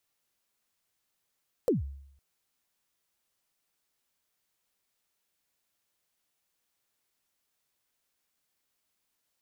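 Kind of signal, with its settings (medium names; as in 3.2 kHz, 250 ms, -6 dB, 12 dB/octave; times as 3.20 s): kick drum length 0.51 s, from 550 Hz, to 69 Hz, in 144 ms, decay 0.72 s, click on, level -19.5 dB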